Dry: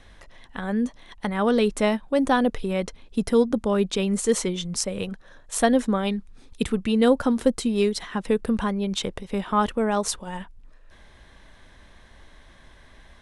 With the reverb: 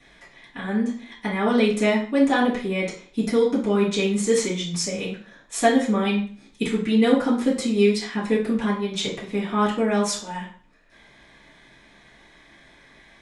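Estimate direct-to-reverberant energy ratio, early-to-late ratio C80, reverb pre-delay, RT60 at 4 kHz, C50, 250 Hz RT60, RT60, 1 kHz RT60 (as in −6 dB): −10.5 dB, 12.0 dB, 3 ms, 0.40 s, 6.5 dB, 0.50 s, 0.45 s, 0.45 s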